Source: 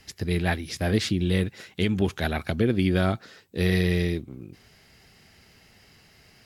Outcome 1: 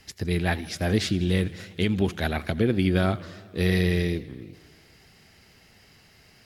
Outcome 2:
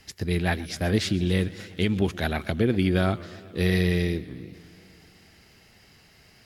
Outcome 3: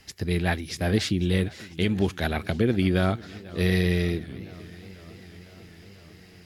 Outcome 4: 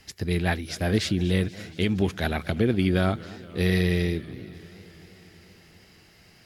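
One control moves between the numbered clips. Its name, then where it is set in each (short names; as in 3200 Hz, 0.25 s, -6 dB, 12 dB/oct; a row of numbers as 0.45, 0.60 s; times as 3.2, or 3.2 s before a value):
warbling echo, time: 83, 126, 499, 237 ms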